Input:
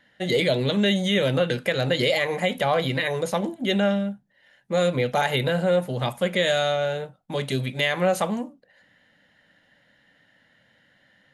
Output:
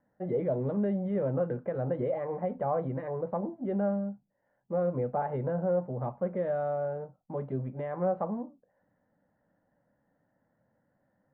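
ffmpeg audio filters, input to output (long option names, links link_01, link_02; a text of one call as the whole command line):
ffmpeg -i in.wav -af "lowpass=frequency=1100:width=0.5412,lowpass=frequency=1100:width=1.3066,volume=-7dB" out.wav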